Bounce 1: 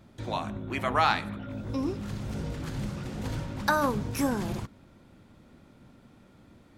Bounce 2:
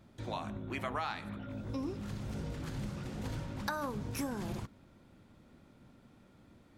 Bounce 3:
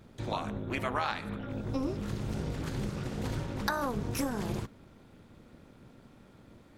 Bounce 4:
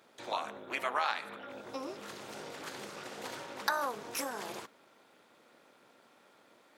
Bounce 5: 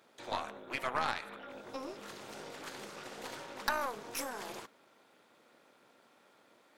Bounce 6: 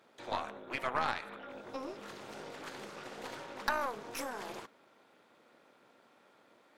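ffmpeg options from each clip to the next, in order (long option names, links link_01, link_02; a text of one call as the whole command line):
ffmpeg -i in.wav -af "acompressor=threshold=-28dB:ratio=6,volume=-5dB" out.wav
ffmpeg -i in.wav -af "tremolo=f=250:d=0.71,volume=8dB" out.wav
ffmpeg -i in.wav -af "highpass=580,volume=1dB" out.wav
ffmpeg -i in.wav -af "aeval=exprs='0.251*(cos(1*acos(clip(val(0)/0.251,-1,1)))-cos(1*PI/2))+0.0178*(cos(8*acos(clip(val(0)/0.251,-1,1)))-cos(8*PI/2))':channel_layout=same,volume=-2dB" out.wav
ffmpeg -i in.wav -af "highshelf=frequency=4600:gain=-7,volume=1dB" out.wav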